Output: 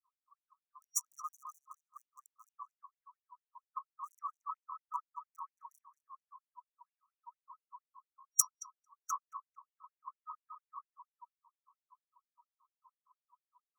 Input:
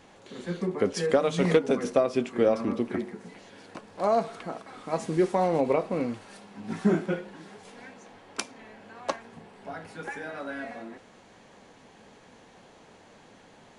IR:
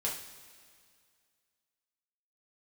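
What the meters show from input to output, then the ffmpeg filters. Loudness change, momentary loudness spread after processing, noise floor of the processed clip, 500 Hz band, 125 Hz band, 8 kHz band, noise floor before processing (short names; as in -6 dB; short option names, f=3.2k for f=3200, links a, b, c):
-12.0 dB, 21 LU, under -85 dBFS, under -40 dB, under -40 dB, +7.0 dB, -55 dBFS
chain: -filter_complex "[0:a]acrossover=split=440|1100[a][b][c];[c]acrusher=bits=4:mix=0:aa=0.000001[d];[a][b][d]amix=inputs=3:normalize=0,afftfilt=real='re*(1-between(b*sr/4096,1300,5700))':imag='im*(1-between(b*sr/4096,1300,5700))':win_size=4096:overlap=0.75,areverse,acompressor=threshold=-37dB:ratio=16,areverse,asplit=2[e][f];[f]adelay=224,lowpass=f=1.8k:p=1,volume=-5dB,asplit=2[g][h];[h]adelay=224,lowpass=f=1.8k:p=1,volume=0.49,asplit=2[i][j];[j]adelay=224,lowpass=f=1.8k:p=1,volume=0.49,asplit=2[k][l];[l]adelay=224,lowpass=f=1.8k:p=1,volume=0.49,asplit=2[m][n];[n]adelay=224,lowpass=f=1.8k:p=1,volume=0.49,asplit=2[o][p];[p]adelay=224,lowpass=f=1.8k:p=1,volume=0.49[q];[e][g][i][k][m][o][q]amix=inputs=7:normalize=0,afftdn=nr=23:nf=-52,dynaudnorm=f=120:g=5:m=10.5dB,afftfilt=real='re*gte(b*sr/1024,940*pow(2900/940,0.5+0.5*sin(2*PI*4.3*pts/sr)))':imag='im*gte(b*sr/1024,940*pow(2900/940,0.5+0.5*sin(2*PI*4.3*pts/sr)))':win_size=1024:overlap=0.75,volume=8.5dB"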